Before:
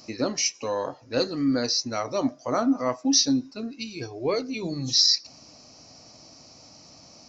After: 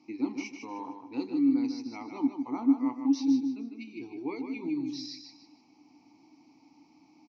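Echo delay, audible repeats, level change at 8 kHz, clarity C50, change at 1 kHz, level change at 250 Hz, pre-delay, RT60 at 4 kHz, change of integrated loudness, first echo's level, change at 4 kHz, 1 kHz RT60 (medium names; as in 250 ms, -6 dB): 153 ms, 3, no reading, no reverb, -9.0 dB, -0.5 dB, no reverb, no reverb, -6.5 dB, -7.0 dB, -22.5 dB, no reverb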